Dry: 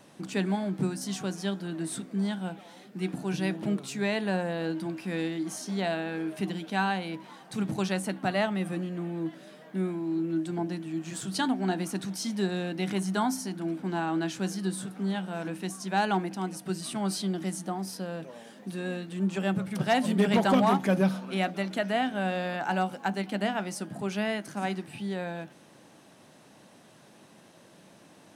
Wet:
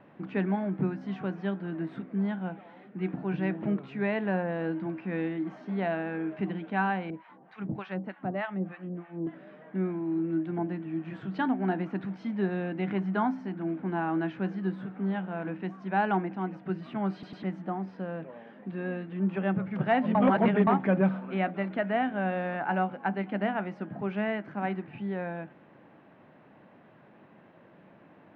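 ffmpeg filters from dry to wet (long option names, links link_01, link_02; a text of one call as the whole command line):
ffmpeg -i in.wav -filter_complex "[0:a]asettb=1/sr,asplit=3[link_01][link_02][link_03];[link_01]atrim=end=7.104[link_04];[link_02]atrim=start=7.1:end=9.27,asetpts=PTS-STARTPTS,afade=type=in:duration=0.004:curve=qsin,afade=type=out:start_time=2.166:duration=0.004:curve=qsin,acrossover=split=770[link_05][link_06];[link_05]aeval=exprs='val(0)*(1-1/2+1/2*cos(2*PI*3.3*n/s))':channel_layout=same[link_07];[link_06]aeval=exprs='val(0)*(1-1/2-1/2*cos(2*PI*3.3*n/s))':channel_layout=same[link_08];[link_07][link_08]amix=inputs=2:normalize=0[link_09];[link_03]atrim=start=9.266[link_10];[link_04][link_09]acrossfade=duration=0.004:curve1=hsin:curve2=qsin[link_11];[link_11][link_10]acrossfade=duration=0.004:curve1=qsin:curve2=hsin,asplit=6[link_12][link_13][link_14][link_15][link_16][link_17];[link_12]atrim=end=17.232[link_18];[link_13]atrim=start=17.128:end=17.232[link_19];[link_14]atrim=start=17.128:end=17.232[link_20];[link_15]atrim=start=17.428:end=20.152[link_21];[link_16]atrim=start=20.148:end=20.672,asetpts=PTS-STARTPTS,areverse[link_22];[link_17]atrim=start=20.668[link_23];[link_18][link_19]acrossfade=duration=0.004:curve1=hsin:curve2=hsin[link_24];[link_24][link_20]acrossfade=duration=0.004:curve1=hsin:curve2=hsin[link_25];[link_25][link_21]acrossfade=duration=0.004:curve1=hsin:curve2=hsin[link_26];[link_26][link_22]acrossfade=duration=0.004:curve1=hsin:curve2=hsin[link_27];[link_27][link_23]acrossfade=duration=0.004:curve1=hsin:curve2=hsin,lowpass=frequency=2300:width=0.5412,lowpass=frequency=2300:width=1.3066" out.wav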